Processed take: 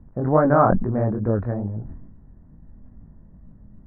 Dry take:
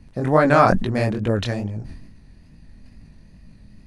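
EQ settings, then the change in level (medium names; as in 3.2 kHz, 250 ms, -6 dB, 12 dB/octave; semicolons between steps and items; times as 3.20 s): inverse Chebyshev low-pass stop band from 2.8 kHz, stop band 40 dB; distance through air 370 m; 0.0 dB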